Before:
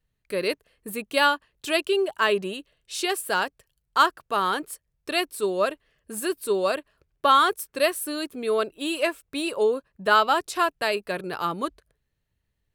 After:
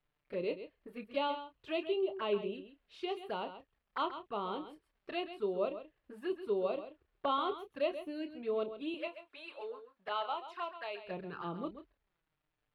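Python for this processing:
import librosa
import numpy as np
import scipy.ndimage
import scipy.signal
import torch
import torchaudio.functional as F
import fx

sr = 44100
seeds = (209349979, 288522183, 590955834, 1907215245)

y = fx.highpass(x, sr, hz=750.0, slope=12, at=(8.94, 11.06))
y = fx.dmg_crackle(y, sr, seeds[0], per_s=200.0, level_db=-50.0)
y = fx.env_flanger(y, sr, rest_ms=6.9, full_db=-24.5)
y = fx.air_absorb(y, sr, metres=380.0)
y = fx.doubler(y, sr, ms=29.0, db=-10)
y = y + 10.0 ** (-11.0 / 20.0) * np.pad(y, (int(133 * sr / 1000.0), 0))[:len(y)]
y = y * librosa.db_to_amplitude(-8.0)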